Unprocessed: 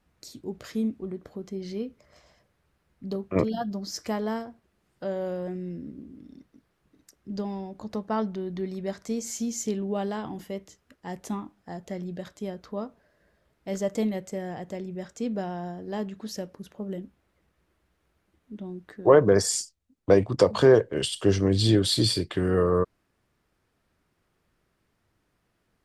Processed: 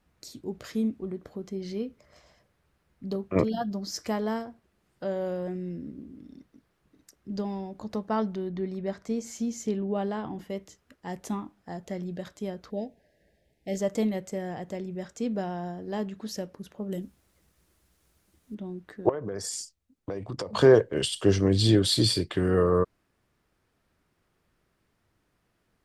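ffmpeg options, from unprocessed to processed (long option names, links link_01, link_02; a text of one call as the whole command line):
ffmpeg -i in.wav -filter_complex "[0:a]asettb=1/sr,asplit=3[link_01][link_02][link_03];[link_01]atrim=end=8.494[link_04];[link_02]atrim=start=8.49:end=10.5,asetpts=PTS-STARTPTS,afade=type=in:duration=0.004:curve=qsin,afade=type=out:start_time=2.006:duration=0.004:curve=qsin,highshelf=frequency=4000:gain=-10[link_05];[link_03]atrim=start=10.496[link_06];[link_04][link_05]acrossfade=duration=0.004:curve1=hsin:curve2=qsin[link_07];[link_07][link_06]acrossfade=duration=0.004:curve1=qsin:curve2=hsin,asettb=1/sr,asplit=3[link_08][link_09][link_10];[link_08]atrim=end=12.704[link_11];[link_09]atrim=start=12.7:end=13.79,asetpts=PTS-STARTPTS,afade=type=in:duration=0.004:curve=qsin,afade=type=out:start_time=1.086:duration=0.004:curve=qsin,asuperstop=centerf=1200:order=8:qfactor=1.3[link_12];[link_10]atrim=start=13.786[link_13];[link_11][link_12]acrossfade=duration=0.004:curve1=hsin:curve2=qsin[link_14];[link_14][link_13]acrossfade=duration=0.004:curve1=qsin:curve2=hsin,asettb=1/sr,asplit=3[link_15][link_16][link_17];[link_15]atrim=end=16.924[link_18];[link_16]atrim=start=16.92:end=18.55,asetpts=PTS-STARTPTS,afade=type=in:duration=0.004:curve=qsin,afade=type=out:start_time=1.626:duration=0.004:curve=qsin,bass=frequency=250:gain=3,treble=frequency=4000:gain=14[link_19];[link_17]atrim=start=18.546[link_20];[link_18][link_19]acrossfade=duration=0.004:curve1=hsin:curve2=qsin[link_21];[link_21][link_20]acrossfade=duration=0.004:curve1=qsin:curve2=hsin,asettb=1/sr,asplit=3[link_22][link_23][link_24];[link_22]atrim=end=19.094[link_25];[link_23]atrim=start=19.09:end=20.53,asetpts=PTS-STARTPTS,afade=type=in:duration=0.004:curve=qsin,afade=type=out:start_time=1.436:duration=0.004:curve=qsin,acompressor=threshold=-30dB:ratio=8:attack=3.2:release=140:knee=1:detection=peak[link_26];[link_24]atrim=start=20.526[link_27];[link_25][link_26]acrossfade=duration=0.004:curve1=hsin:curve2=qsin[link_28];[link_28][link_27]acrossfade=duration=0.004:curve1=qsin:curve2=hsin" out.wav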